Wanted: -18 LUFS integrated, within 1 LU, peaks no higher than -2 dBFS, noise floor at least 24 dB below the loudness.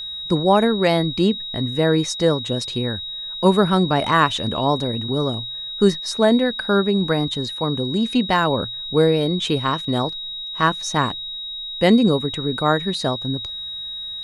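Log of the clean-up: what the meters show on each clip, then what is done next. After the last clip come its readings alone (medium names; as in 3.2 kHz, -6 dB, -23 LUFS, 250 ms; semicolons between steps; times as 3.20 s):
steady tone 3.8 kHz; tone level -28 dBFS; loudness -20.0 LUFS; peak level -2.0 dBFS; loudness target -18.0 LUFS
-> band-stop 3.8 kHz, Q 30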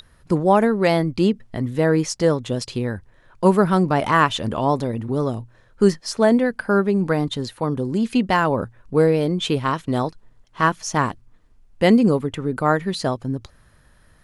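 steady tone not found; loudness -20.5 LUFS; peak level -2.5 dBFS; loudness target -18.0 LUFS
-> trim +2.5 dB; peak limiter -2 dBFS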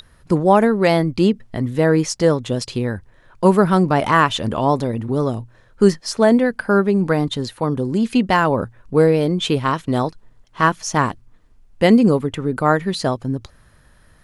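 loudness -18.0 LUFS; peak level -2.0 dBFS; noise floor -52 dBFS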